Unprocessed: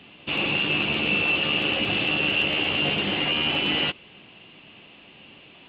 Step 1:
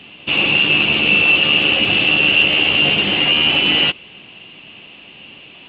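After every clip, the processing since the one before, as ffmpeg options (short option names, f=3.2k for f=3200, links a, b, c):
-af "equalizer=f=2.8k:t=o:w=0.54:g=5.5,volume=5.5dB"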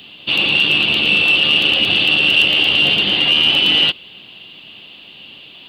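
-af "aexciter=amount=8.2:drive=3.3:freq=3.5k,volume=-3dB"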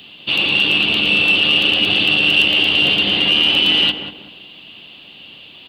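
-filter_complex "[0:a]asplit=2[a][b];[b]adelay=190,lowpass=f=1.1k:p=1,volume=-5.5dB,asplit=2[c][d];[d]adelay=190,lowpass=f=1.1k:p=1,volume=0.38,asplit=2[e][f];[f]adelay=190,lowpass=f=1.1k:p=1,volume=0.38,asplit=2[g][h];[h]adelay=190,lowpass=f=1.1k:p=1,volume=0.38,asplit=2[i][j];[j]adelay=190,lowpass=f=1.1k:p=1,volume=0.38[k];[a][c][e][g][i][k]amix=inputs=6:normalize=0,volume=-1dB"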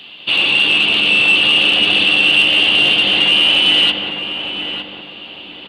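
-filter_complex "[0:a]asplit=2[a][b];[b]highpass=f=720:p=1,volume=10dB,asoftclip=type=tanh:threshold=-1.5dB[c];[a][c]amix=inputs=2:normalize=0,lowpass=f=3.5k:p=1,volume=-6dB,asplit=2[d][e];[e]adelay=906,lowpass=f=1.5k:p=1,volume=-5dB,asplit=2[f][g];[g]adelay=906,lowpass=f=1.5k:p=1,volume=0.39,asplit=2[h][i];[i]adelay=906,lowpass=f=1.5k:p=1,volume=0.39,asplit=2[j][k];[k]adelay=906,lowpass=f=1.5k:p=1,volume=0.39,asplit=2[l][m];[m]adelay=906,lowpass=f=1.5k:p=1,volume=0.39[n];[d][f][h][j][l][n]amix=inputs=6:normalize=0"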